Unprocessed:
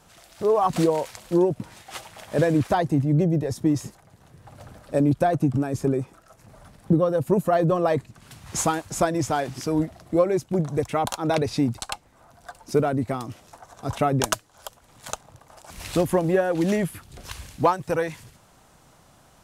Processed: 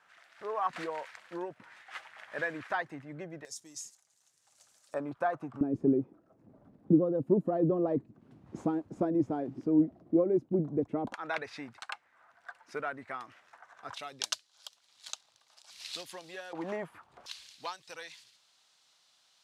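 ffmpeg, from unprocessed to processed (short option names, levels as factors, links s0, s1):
-af "asetnsamples=n=441:p=0,asendcmd='3.45 bandpass f 6800;4.94 bandpass f 1200;5.61 bandpass f 290;11.14 bandpass f 1700;13.94 bandpass f 4200;16.53 bandpass f 1000;17.26 bandpass f 4100',bandpass=f=1700:t=q:w=2.2:csg=0"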